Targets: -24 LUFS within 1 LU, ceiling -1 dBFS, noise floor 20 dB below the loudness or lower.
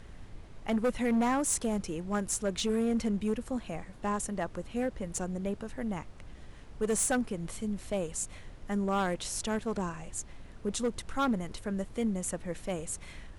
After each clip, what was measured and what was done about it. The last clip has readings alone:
clipped samples 1.6%; clipping level -23.5 dBFS; noise floor -49 dBFS; noise floor target -53 dBFS; loudness -33.0 LUFS; peak level -23.5 dBFS; loudness target -24.0 LUFS
-> clip repair -23.5 dBFS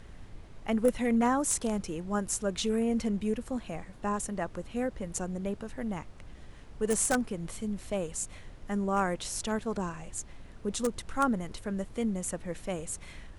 clipped samples 0.0%; noise floor -49 dBFS; noise floor target -52 dBFS
-> noise print and reduce 6 dB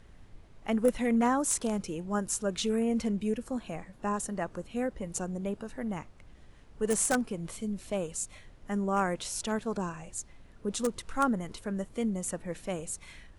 noise floor -54 dBFS; loudness -32.0 LUFS; peak level -14.0 dBFS; loudness target -24.0 LUFS
-> trim +8 dB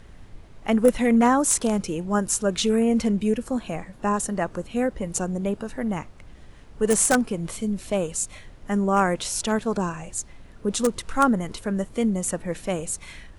loudness -24.0 LUFS; peak level -6.0 dBFS; noise floor -46 dBFS

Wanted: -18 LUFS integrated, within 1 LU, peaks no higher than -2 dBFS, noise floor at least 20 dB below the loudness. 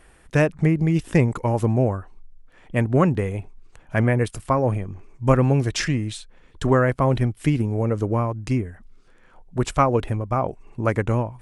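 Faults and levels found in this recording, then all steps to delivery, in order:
loudness -22.5 LUFS; peak level -4.0 dBFS; loudness target -18.0 LUFS
-> trim +4.5 dB; peak limiter -2 dBFS

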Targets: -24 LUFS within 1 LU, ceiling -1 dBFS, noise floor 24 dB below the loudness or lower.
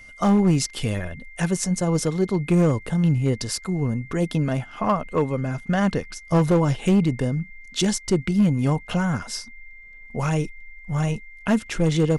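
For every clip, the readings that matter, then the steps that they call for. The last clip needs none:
clipped samples 0.9%; clipping level -12.5 dBFS; steady tone 2.1 kHz; tone level -43 dBFS; loudness -23.0 LUFS; peak level -12.5 dBFS; loudness target -24.0 LUFS
-> clip repair -12.5 dBFS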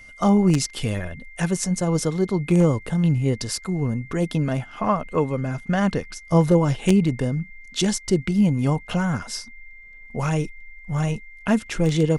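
clipped samples 0.0%; steady tone 2.1 kHz; tone level -43 dBFS
-> band-stop 2.1 kHz, Q 30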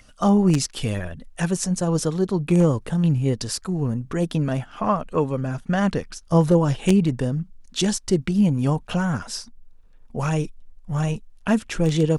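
steady tone not found; loudness -22.5 LUFS; peak level -3.5 dBFS; loudness target -24.0 LUFS
-> trim -1.5 dB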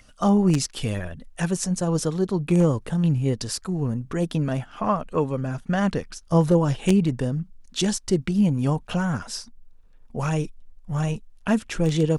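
loudness -24.0 LUFS; peak level -5.0 dBFS; noise floor -51 dBFS

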